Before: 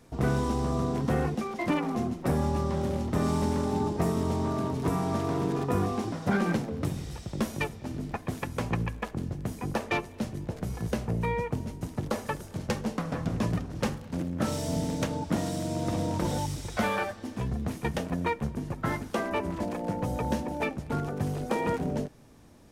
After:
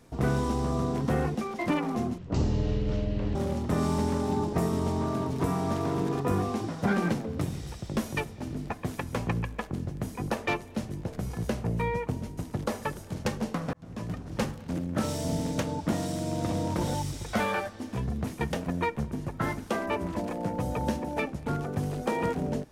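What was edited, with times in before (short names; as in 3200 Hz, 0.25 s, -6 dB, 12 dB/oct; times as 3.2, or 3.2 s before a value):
2.18–2.79 speed 52%
13.17–13.86 fade in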